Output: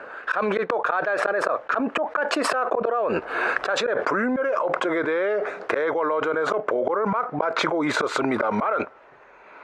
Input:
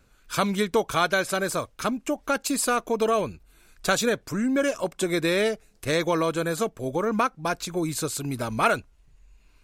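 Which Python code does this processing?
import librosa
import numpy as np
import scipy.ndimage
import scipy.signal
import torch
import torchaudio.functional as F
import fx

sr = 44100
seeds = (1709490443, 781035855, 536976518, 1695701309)

y = fx.doppler_pass(x, sr, speed_mps=19, closest_m=7.6, pass_at_s=3.94)
y = scipy.signal.sosfilt(scipy.signal.cheby1(2, 1.0, [500.0, 1500.0], 'bandpass', fs=sr, output='sos'), y)
y = fx.rider(y, sr, range_db=3, speed_s=2.0)
y = fx.auto_swell(y, sr, attack_ms=189.0)
y = fx.env_flatten(y, sr, amount_pct=100)
y = y * librosa.db_to_amplitude(8.0)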